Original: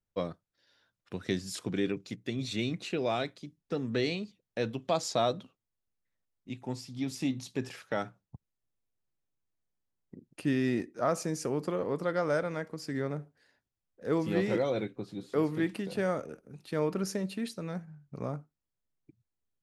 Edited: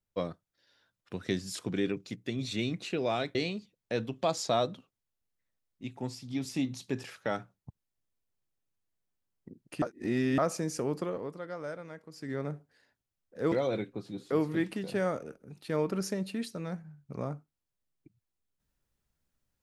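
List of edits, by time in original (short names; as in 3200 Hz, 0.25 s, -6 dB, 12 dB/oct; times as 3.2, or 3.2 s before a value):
3.35–4.01 cut
10.48–11.04 reverse
11.61–13.15 dip -10 dB, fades 0.41 s
14.18–14.55 cut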